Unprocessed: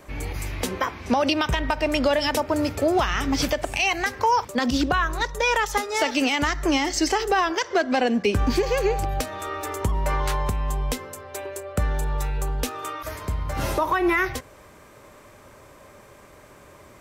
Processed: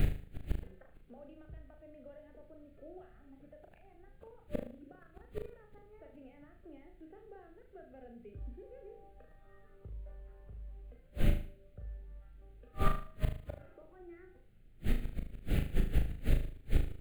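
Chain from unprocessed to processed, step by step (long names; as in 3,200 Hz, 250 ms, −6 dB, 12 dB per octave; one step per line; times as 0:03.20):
noise reduction from a noise print of the clip's start 20 dB
treble cut that deepens with the level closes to 730 Hz, closed at −21.5 dBFS
noise gate with hold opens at −37 dBFS
low-pass that shuts in the quiet parts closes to 580 Hz, open at −14 dBFS
parametric band 250 Hz −9 dB 1.3 octaves
background noise brown −38 dBFS
phaser with its sweep stopped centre 2,400 Hz, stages 4
gate with flip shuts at −31 dBFS, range −38 dB
flutter between parallel walls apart 6.5 metres, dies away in 0.45 s
level +14.5 dB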